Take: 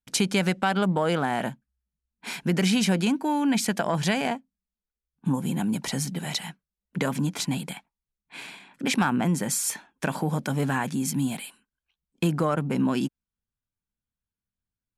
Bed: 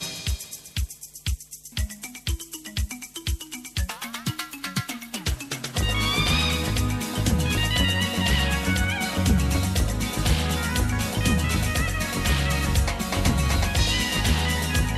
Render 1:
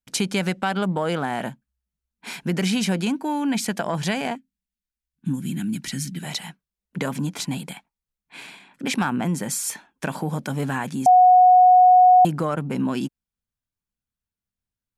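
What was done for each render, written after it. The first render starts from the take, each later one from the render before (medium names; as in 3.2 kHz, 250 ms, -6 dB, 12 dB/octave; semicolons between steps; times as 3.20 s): 4.35–6.23 s: high-order bell 700 Hz -15.5 dB; 11.06–12.25 s: bleep 732 Hz -9 dBFS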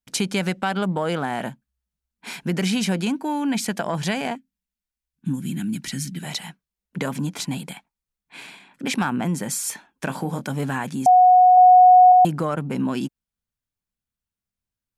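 10.05–10.48 s: doubling 23 ms -9.5 dB; 11.56–12.12 s: doubling 12 ms -5 dB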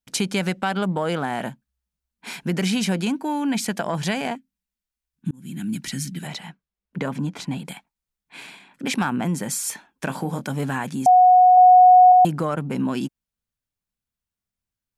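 5.31–5.72 s: fade in; 6.27–7.65 s: low-pass 2.5 kHz 6 dB/octave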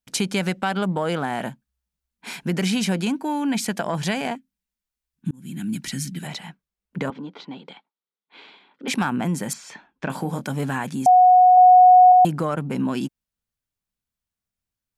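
7.10–8.88 s: cabinet simulation 380–3800 Hz, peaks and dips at 430 Hz +4 dB, 680 Hz -6 dB, 1 kHz -3 dB, 1.7 kHz -9 dB, 2.5 kHz -9 dB; 9.53–10.10 s: distance through air 180 m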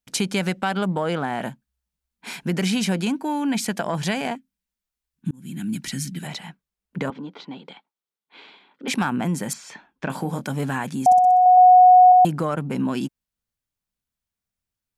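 1.00–1.41 s: treble shelf 8.1 kHz -> 5.4 kHz -7.5 dB; 11.05–11.46 s: flutter echo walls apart 10.7 m, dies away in 0.67 s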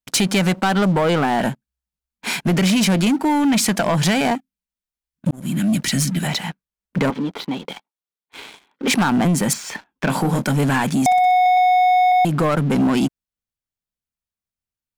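compression 12:1, threshold -19 dBFS, peak gain reduction 10 dB; waveshaping leveller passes 3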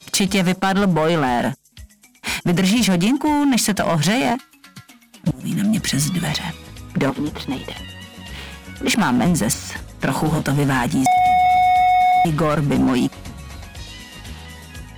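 add bed -13 dB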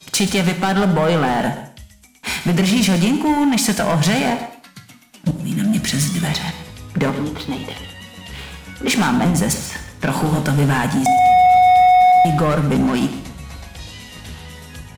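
delay 127 ms -13.5 dB; gated-style reverb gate 260 ms falling, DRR 7.5 dB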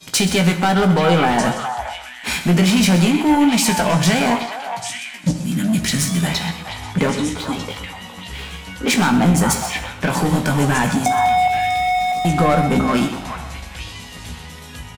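doubling 17 ms -6.5 dB; on a send: repeats whose band climbs or falls 415 ms, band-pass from 1 kHz, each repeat 1.4 oct, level -3 dB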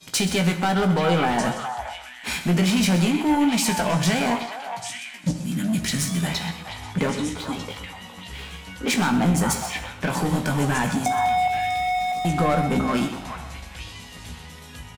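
trim -5.5 dB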